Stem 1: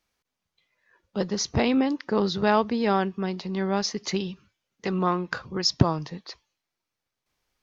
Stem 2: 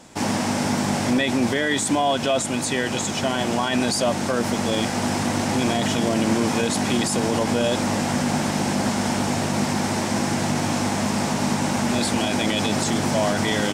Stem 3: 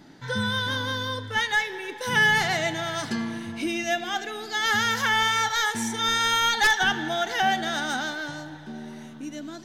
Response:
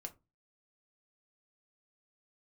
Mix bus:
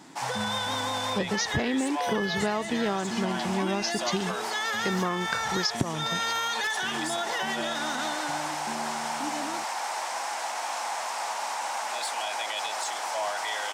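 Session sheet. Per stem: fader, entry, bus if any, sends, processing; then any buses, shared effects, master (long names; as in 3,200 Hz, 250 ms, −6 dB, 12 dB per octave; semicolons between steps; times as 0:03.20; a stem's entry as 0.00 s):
+1.0 dB, 0.00 s, no bus, no send, no processing
+2.0 dB, 0.00 s, bus A, no send, four-pole ladder high-pass 680 Hz, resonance 40%; soft clipping −23 dBFS, distortion −21 dB
+0.5 dB, 0.00 s, bus A, no send, notch comb filter 790 Hz
bus A: 0.0 dB, low-shelf EQ 97 Hz −11.5 dB; brickwall limiter −20.5 dBFS, peak gain reduction 9.5 dB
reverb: not used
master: downward compressor 10 to 1, threshold −23 dBFS, peak gain reduction 13.5 dB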